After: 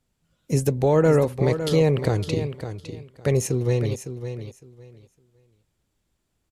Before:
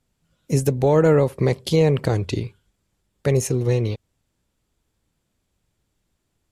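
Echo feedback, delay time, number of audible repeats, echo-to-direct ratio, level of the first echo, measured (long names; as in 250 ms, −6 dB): 19%, 558 ms, 2, −10.0 dB, −10.0 dB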